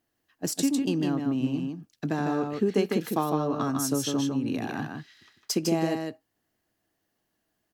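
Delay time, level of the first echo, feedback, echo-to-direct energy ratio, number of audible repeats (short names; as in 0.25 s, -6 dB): 0.153 s, -4.5 dB, no steady repeat, -4.5 dB, 1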